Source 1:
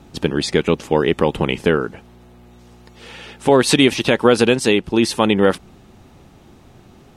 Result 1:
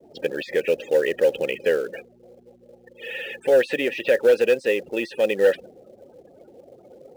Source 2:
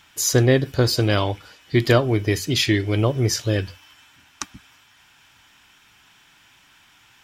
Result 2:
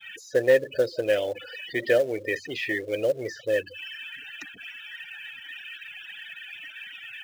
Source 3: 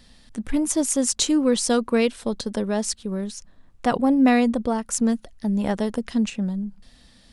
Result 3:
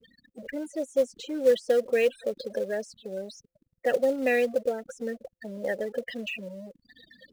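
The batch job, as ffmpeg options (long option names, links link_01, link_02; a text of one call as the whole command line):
ffmpeg -i in.wav -filter_complex "[0:a]aeval=exprs='val(0)+0.5*0.0631*sgn(val(0))':channel_layout=same,afftfilt=real='re*gte(hypot(re,im),0.0631)':imag='im*gte(hypot(re,im),0.0631)':win_size=1024:overlap=0.75,apsyclip=4dB,tiltshelf=frequency=1500:gain=-4.5,acrossover=split=2000[link_01][link_02];[link_02]acompressor=threshold=-25dB:ratio=5[link_03];[link_01][link_03]amix=inputs=2:normalize=0,agate=range=-33dB:threshold=-26dB:ratio=3:detection=peak,asplit=3[link_04][link_05][link_06];[link_04]bandpass=frequency=530:width_type=q:width=8,volume=0dB[link_07];[link_05]bandpass=frequency=1840:width_type=q:width=8,volume=-6dB[link_08];[link_06]bandpass=frequency=2480:width_type=q:width=8,volume=-9dB[link_09];[link_07][link_08][link_09]amix=inputs=3:normalize=0,asplit=2[link_10][link_11];[link_11]acrusher=bits=3:mode=log:mix=0:aa=0.000001,volume=-6dB[link_12];[link_10][link_12]amix=inputs=2:normalize=0,volume=10.5dB,asoftclip=hard,volume=-10.5dB" out.wav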